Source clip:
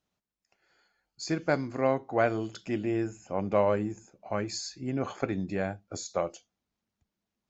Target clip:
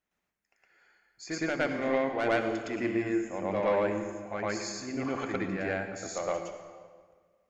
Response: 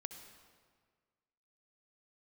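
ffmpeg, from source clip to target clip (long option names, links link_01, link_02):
-filter_complex "[0:a]equalizer=frequency=125:width_type=o:width=1:gain=-7,equalizer=frequency=2000:width_type=o:width=1:gain=9,equalizer=frequency=4000:width_type=o:width=1:gain=-6,asoftclip=type=tanh:threshold=-19dB,asplit=2[link_01][link_02];[1:a]atrim=start_sample=2205,adelay=113[link_03];[link_02][link_03]afir=irnorm=-1:irlink=0,volume=8dB[link_04];[link_01][link_04]amix=inputs=2:normalize=0,volume=-5dB"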